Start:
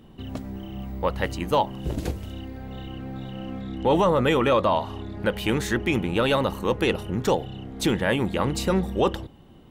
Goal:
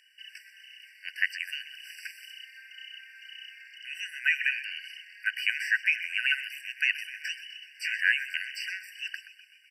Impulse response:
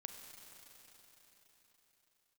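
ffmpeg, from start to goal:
-filter_complex "[0:a]asettb=1/sr,asplit=3[a][b][c];[a]atrim=end=7.044[d];[b]atrim=start=7.04:end=8.01,asetpts=PTS-STARTPTS,afade=t=in:d=0.004:c=qsin,afade=t=out:st=0.966:d=0.004:c=qsin,asplit=2[e][f];[f]adelay=17,volume=-5dB[g];[e][g]amix=inputs=2:normalize=0,atrim=end_sample=42777[h];[c]atrim=start=8.006[i];[d][h]acrossfade=d=0.004:c1=hsin:c2=qsin[j];[j][i]acrossfade=d=0.004:c1=qsin:c2=hsin,acrossover=split=3900[k][l];[l]acompressor=threshold=-50dB:ratio=4:attack=1:release=60[m];[k][m]amix=inputs=2:normalize=0,asplit=8[n][o][p][q][r][s][t][u];[o]adelay=126,afreqshift=-84,volume=-14.5dB[v];[p]adelay=252,afreqshift=-168,volume=-18.4dB[w];[q]adelay=378,afreqshift=-252,volume=-22.3dB[x];[r]adelay=504,afreqshift=-336,volume=-26.1dB[y];[s]adelay=630,afreqshift=-420,volume=-30dB[z];[t]adelay=756,afreqshift=-504,volume=-33.9dB[aa];[u]adelay=882,afreqshift=-588,volume=-37.8dB[ab];[n][v][w][x][y][z][aa][ab]amix=inputs=8:normalize=0,afftfilt=real='re*eq(mod(floor(b*sr/1024/1500),2),1)':imag='im*eq(mod(floor(b*sr/1024/1500),2),1)':win_size=1024:overlap=0.75,volume=5.5dB"

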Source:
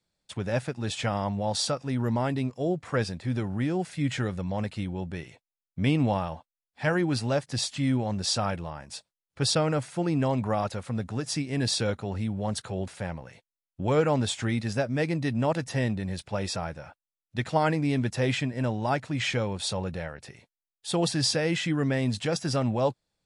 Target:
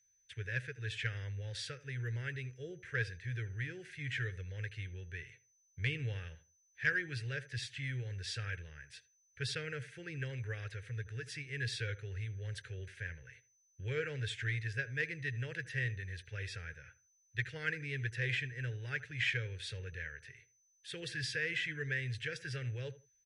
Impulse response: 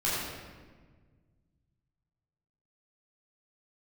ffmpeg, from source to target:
-filter_complex "[0:a]aeval=exprs='val(0)+0.002*sin(2*PI*6100*n/s)':c=same,firequalizer=gain_entry='entry(120,0);entry(210,-28);entry(440,-4);entry(660,-29);entry(1100,-25);entry(1600,8);entry(4300,-7);entry(6800,-11)':delay=0.05:min_phase=1,asplit=2[a][b];[b]adelay=79,lowpass=f=1.6k:p=1,volume=-16dB,asplit=2[c][d];[d]adelay=79,lowpass=f=1.6k:p=1,volume=0.24[e];[a][c][e]amix=inputs=3:normalize=0,aeval=exprs='0.224*(cos(1*acos(clip(val(0)/0.224,-1,1)))-cos(1*PI/2))+0.02*(cos(3*acos(clip(val(0)/0.224,-1,1)))-cos(3*PI/2))':c=same,volume=-4.5dB"

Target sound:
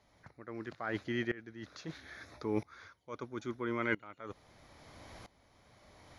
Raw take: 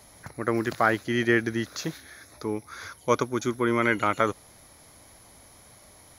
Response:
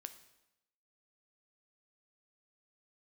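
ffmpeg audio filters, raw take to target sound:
-af "lowpass=4.2k,areverse,acompressor=threshold=-33dB:ratio=10,areverse,aeval=exprs='val(0)*pow(10,-20*if(lt(mod(-0.76*n/s,1),2*abs(-0.76)/1000),1-mod(-0.76*n/s,1)/(2*abs(-0.76)/1000),(mod(-0.76*n/s,1)-2*abs(-0.76)/1000)/(1-2*abs(-0.76)/1000))/20)':c=same,volume=5.5dB"

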